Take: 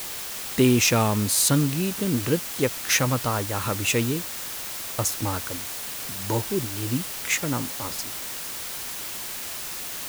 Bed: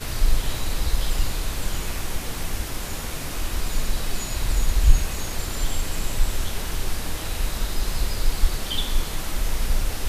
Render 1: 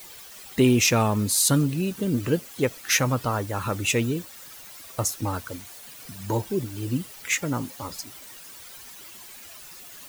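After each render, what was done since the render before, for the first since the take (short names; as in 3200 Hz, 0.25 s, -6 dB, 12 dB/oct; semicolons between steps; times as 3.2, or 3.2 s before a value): denoiser 13 dB, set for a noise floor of -34 dBFS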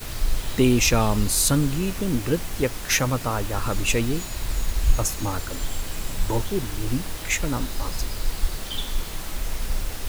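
add bed -4 dB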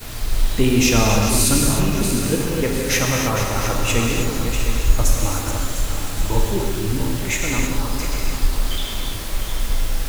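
regenerating reverse delay 0.352 s, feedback 62%, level -8 dB; non-linear reverb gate 0.34 s flat, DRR -1 dB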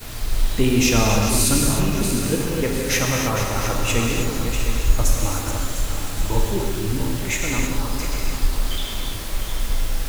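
gain -1.5 dB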